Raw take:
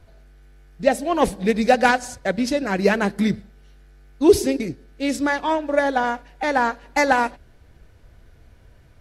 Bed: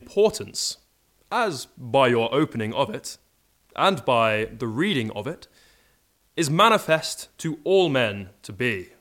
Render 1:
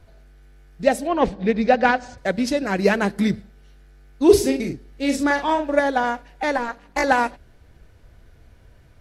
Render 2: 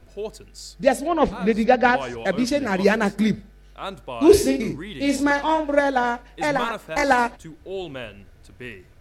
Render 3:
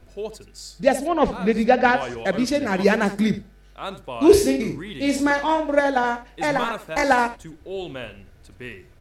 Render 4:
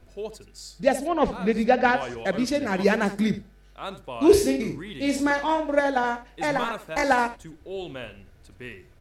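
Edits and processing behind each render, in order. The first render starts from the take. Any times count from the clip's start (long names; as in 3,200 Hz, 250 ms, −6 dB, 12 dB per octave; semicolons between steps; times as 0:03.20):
0:01.07–0:02.18: high-frequency loss of the air 180 metres; 0:04.26–0:05.80: double-tracking delay 42 ms −6 dB; 0:06.56–0:07.04: amplitude modulation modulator 240 Hz, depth 80%
mix in bed −12.5 dB
single-tap delay 72 ms −14 dB
level −3 dB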